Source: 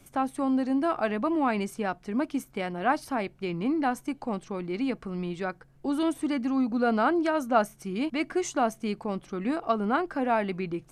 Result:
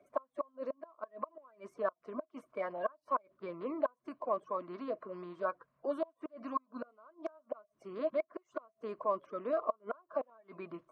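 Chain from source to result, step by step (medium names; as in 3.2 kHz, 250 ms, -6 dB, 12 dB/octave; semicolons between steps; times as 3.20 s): coarse spectral quantiser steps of 30 dB; inverted gate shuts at -19 dBFS, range -33 dB; two resonant band-passes 810 Hz, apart 0.75 oct; trim +5.5 dB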